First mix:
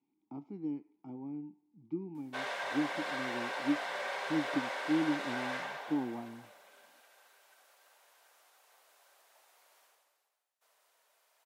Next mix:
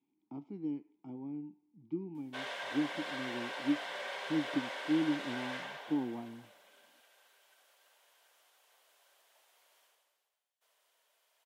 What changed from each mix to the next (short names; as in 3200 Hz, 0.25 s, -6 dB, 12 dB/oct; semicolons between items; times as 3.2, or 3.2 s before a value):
background -3.0 dB; master: add thirty-one-band EQ 800 Hz -3 dB, 1250 Hz -3 dB, 3150 Hz +6 dB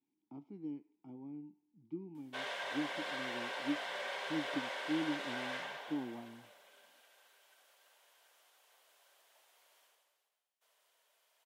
speech -5.5 dB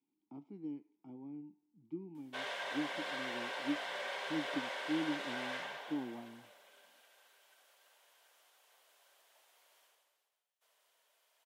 speech: add HPF 110 Hz